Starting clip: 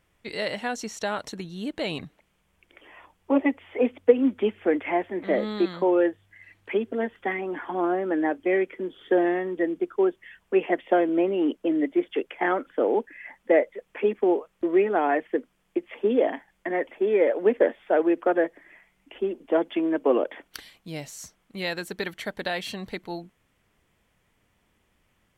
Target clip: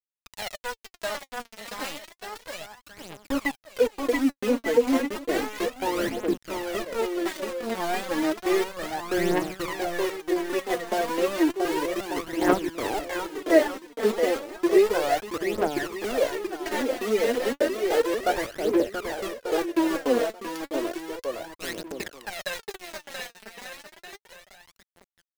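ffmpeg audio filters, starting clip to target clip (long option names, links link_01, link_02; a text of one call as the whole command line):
ffmpeg -i in.wav -af "aeval=exprs='val(0)*gte(abs(val(0)),0.0631)':channel_layout=same,aecho=1:1:680|1190|1572|1859|2075:0.631|0.398|0.251|0.158|0.1,aphaser=in_gain=1:out_gain=1:delay=4.6:decay=0.67:speed=0.32:type=triangular,volume=-5dB" out.wav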